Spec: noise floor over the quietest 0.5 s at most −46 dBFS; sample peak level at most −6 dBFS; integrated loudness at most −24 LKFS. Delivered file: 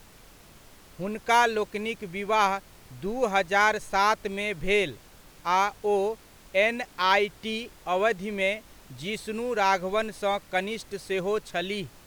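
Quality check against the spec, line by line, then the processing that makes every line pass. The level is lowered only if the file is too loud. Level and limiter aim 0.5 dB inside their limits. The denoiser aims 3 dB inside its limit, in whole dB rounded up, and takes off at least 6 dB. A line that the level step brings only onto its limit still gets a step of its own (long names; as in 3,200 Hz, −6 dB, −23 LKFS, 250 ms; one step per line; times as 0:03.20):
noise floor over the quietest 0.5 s −52 dBFS: in spec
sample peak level −8.5 dBFS: in spec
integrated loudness −26.5 LKFS: in spec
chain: no processing needed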